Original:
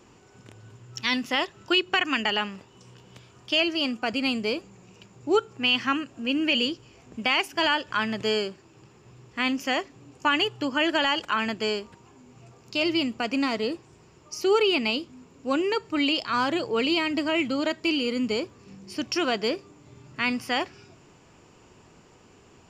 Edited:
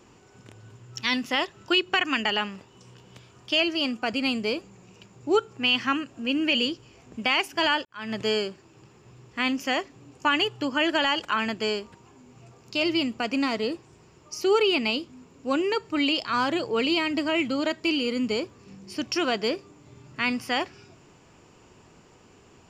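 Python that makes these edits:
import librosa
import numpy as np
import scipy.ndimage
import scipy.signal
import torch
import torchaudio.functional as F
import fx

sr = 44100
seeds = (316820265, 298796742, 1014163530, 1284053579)

y = fx.edit(x, sr, fx.fade_in_span(start_s=7.85, length_s=0.29, curve='qua'), tone=tone)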